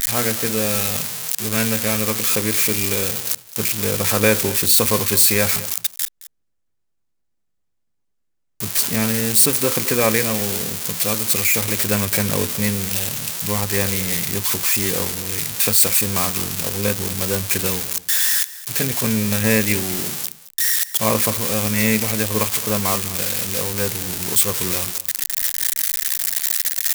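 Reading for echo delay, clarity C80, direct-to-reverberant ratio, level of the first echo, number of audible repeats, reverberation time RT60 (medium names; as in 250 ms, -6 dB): 218 ms, no reverb, no reverb, -17.5 dB, 1, no reverb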